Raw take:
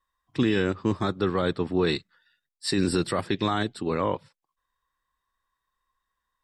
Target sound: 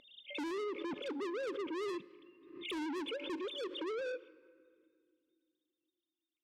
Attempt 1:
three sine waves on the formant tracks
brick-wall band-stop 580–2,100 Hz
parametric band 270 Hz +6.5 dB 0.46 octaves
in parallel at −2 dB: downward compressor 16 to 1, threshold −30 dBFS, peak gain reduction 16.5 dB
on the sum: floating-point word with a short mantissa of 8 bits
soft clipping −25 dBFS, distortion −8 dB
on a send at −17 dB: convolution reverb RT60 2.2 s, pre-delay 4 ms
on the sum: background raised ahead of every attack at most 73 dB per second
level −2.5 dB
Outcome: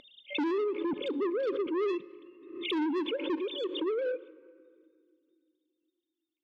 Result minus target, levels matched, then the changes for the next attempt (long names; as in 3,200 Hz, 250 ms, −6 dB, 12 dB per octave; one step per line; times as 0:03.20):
soft clipping: distortion −4 dB
change: soft clipping −35 dBFS, distortion −4 dB